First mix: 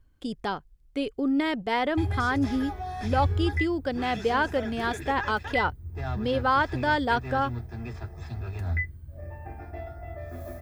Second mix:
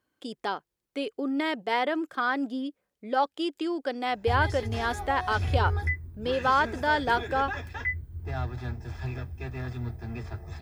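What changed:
speech: add high-pass filter 320 Hz 12 dB per octave
background: entry +2.30 s

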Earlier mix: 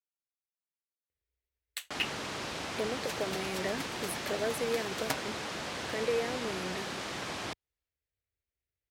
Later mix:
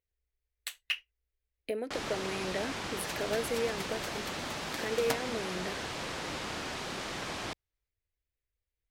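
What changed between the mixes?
speech: entry −1.10 s
master: remove high-pass filter 66 Hz

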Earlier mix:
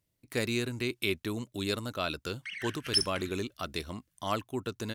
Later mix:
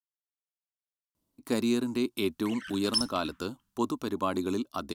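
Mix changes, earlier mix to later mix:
speech: entry +1.15 s
master: add octave-band graphic EQ 125/250/500/1,000/2,000 Hz −9/+11/−3/+10/−10 dB

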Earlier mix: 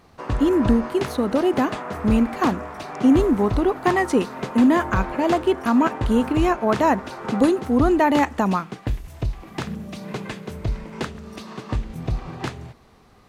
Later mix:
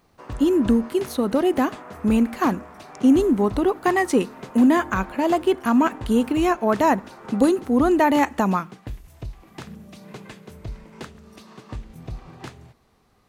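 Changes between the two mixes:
background −9.0 dB
master: add high-shelf EQ 8,000 Hz +7 dB

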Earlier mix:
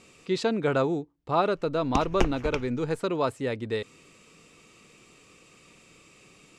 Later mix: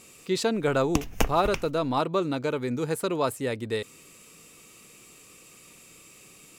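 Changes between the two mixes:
background: entry −1.00 s
master: remove high-frequency loss of the air 92 metres

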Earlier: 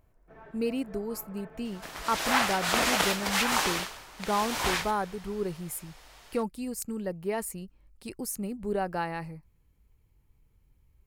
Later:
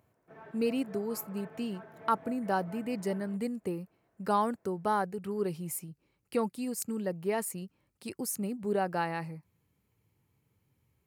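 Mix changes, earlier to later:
second sound: muted
reverb: off
master: add high-pass filter 100 Hz 24 dB per octave

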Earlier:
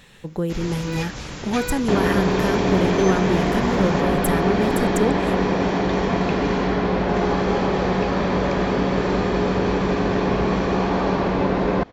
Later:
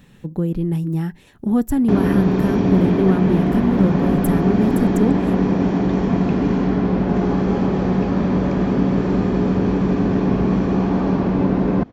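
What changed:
first sound: muted
master: add octave-band graphic EQ 125/250/500/1,000/2,000/4,000/8,000 Hz +4/+7/−4/−3/−5/−7/−6 dB

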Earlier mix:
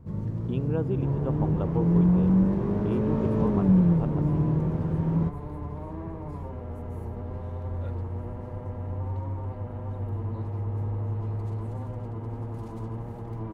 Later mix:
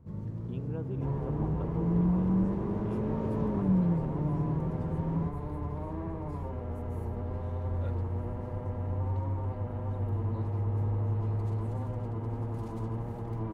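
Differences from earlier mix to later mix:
speech −11.0 dB
first sound −6.5 dB

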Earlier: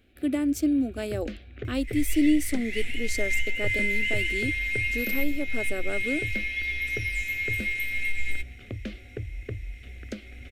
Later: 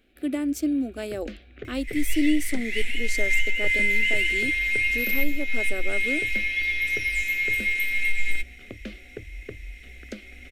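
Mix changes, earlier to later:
second sound +4.5 dB
master: add parametric band 98 Hz −14 dB 0.87 octaves

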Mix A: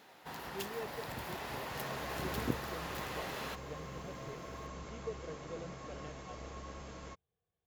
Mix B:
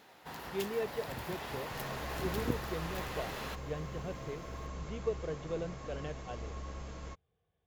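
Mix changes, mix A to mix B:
speech +8.0 dB
second sound: add low-shelf EQ 65 Hz +9.5 dB
master: add low-shelf EQ 62 Hz +5.5 dB

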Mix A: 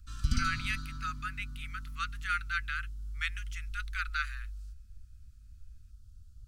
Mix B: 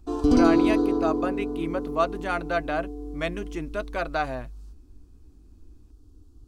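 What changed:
speech: remove inverse Chebyshev high-pass filter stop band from 240 Hz, stop band 60 dB
master: remove Chebyshev band-stop filter 210–1,300 Hz, order 5

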